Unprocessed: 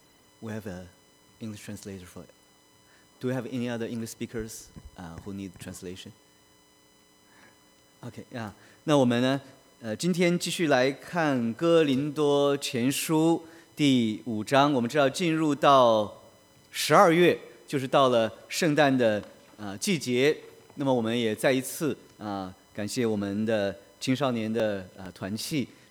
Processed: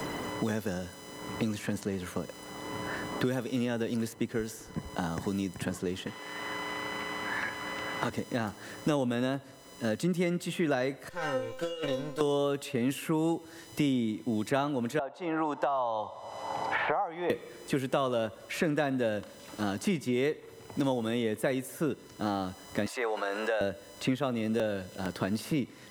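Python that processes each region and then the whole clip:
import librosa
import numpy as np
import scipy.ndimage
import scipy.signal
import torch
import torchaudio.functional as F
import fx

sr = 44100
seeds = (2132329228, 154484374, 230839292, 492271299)

y = fx.chain(x, sr, fx.highpass(hz=240.0, slope=6),
    fx.peak_eq(hz=2000.0, db=9.5, octaves=2.2), at=(6.06, 8.1))
y = fx.chain(y, sr, fx.lower_of_two(delay_ms=2.1),
    fx.over_compress(threshold_db=-25.0, ratio=-0.5),
    fx.comb_fb(f0_hz=260.0, decay_s=0.42, harmonics='all', damping=0.0, mix_pct=90), at=(11.09, 12.21))
y = fx.chain(y, sr, fx.bandpass_q(hz=820.0, q=5.6),
    fx.band_squash(depth_pct=100), at=(14.99, 17.3))
y = fx.chain(y, sr, fx.highpass(hz=680.0, slope=24),
    fx.tilt_eq(slope=-2.5),
    fx.env_flatten(amount_pct=50), at=(22.86, 23.61))
y = fx.notch(y, sr, hz=2400.0, q=19.0)
y = fx.dynamic_eq(y, sr, hz=4800.0, q=1.2, threshold_db=-48.0, ratio=4.0, max_db=-7)
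y = fx.band_squash(y, sr, depth_pct=100)
y = y * librosa.db_to_amplitude(-3.0)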